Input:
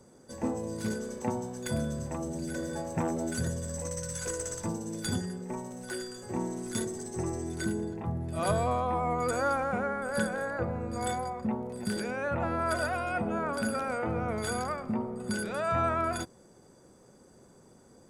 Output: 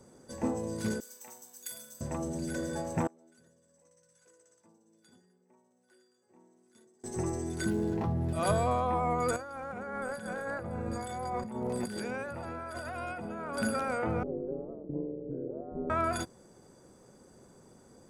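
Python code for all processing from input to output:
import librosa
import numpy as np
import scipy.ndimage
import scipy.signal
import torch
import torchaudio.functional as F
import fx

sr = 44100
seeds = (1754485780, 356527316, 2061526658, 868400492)

y = fx.chain(x, sr, fx.differentiator(),
    fx.room_flutter(wall_m=7.6, rt60_s=0.27),
    fx.resample_bad(factor=2, down='none', up='hold'), at=(1.0, 2.01))
y = fx.chain(y, sr, fx.bandpass_q(hz=230.0, q=0.82),
    fx.differentiator(), at=(3.07, 7.04))
y = fx.chain(y, sr, fx.median_filter(points=15),
    fx.env_flatten(amount_pct=70), at=(7.7, 8.33))
y = fx.chain(y, sr, fx.over_compress(threshold_db=-38.0, ratio=-1.0),
    fx.echo_single(ms=451, db=-15.5), at=(9.36, 13.58))
y = fx.chain(y, sr, fx.ladder_lowpass(hz=520.0, resonance_pct=60),
    fx.peak_eq(hz=320.0, db=14.0, octaves=0.58),
    fx.ring_mod(carrier_hz=74.0), at=(14.23, 15.9))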